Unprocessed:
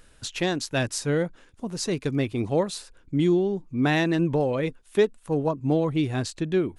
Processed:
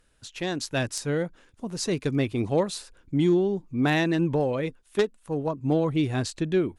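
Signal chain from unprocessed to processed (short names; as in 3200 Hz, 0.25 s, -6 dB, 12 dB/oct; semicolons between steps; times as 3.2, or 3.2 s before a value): added harmonics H 2 -35 dB, 3 -12 dB, 5 -18 dB, 7 -31 dB, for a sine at -10.5 dBFS; AGC gain up to 11 dB; gain -7 dB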